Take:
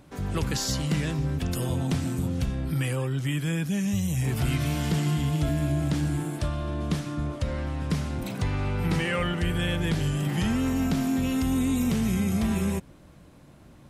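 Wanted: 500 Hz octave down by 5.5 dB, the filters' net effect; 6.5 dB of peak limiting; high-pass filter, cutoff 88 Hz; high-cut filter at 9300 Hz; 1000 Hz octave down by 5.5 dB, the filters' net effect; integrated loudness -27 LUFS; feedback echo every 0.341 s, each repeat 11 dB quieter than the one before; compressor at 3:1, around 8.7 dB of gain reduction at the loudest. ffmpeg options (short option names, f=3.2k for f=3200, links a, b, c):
-af "highpass=88,lowpass=9.3k,equalizer=f=500:t=o:g=-6,equalizer=f=1k:t=o:g=-5.5,acompressor=threshold=-35dB:ratio=3,alimiter=level_in=5.5dB:limit=-24dB:level=0:latency=1,volume=-5.5dB,aecho=1:1:341|682|1023:0.282|0.0789|0.0221,volume=10.5dB"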